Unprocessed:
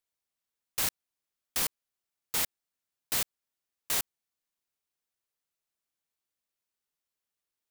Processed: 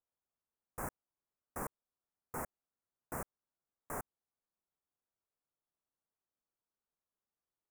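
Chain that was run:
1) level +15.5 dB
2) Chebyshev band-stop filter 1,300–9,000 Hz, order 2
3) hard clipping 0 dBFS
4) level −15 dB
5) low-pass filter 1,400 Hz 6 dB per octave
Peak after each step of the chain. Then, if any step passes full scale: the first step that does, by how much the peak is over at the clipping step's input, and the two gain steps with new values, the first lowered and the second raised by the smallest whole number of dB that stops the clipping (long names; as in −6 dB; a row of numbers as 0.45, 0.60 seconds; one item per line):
−0.5, −2.0, −2.0, −17.0, −28.0 dBFS
no step passes full scale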